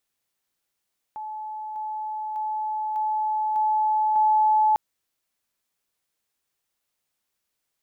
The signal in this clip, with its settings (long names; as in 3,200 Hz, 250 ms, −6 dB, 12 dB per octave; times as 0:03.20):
level staircase 861 Hz −31 dBFS, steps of 3 dB, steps 6, 0.60 s 0.00 s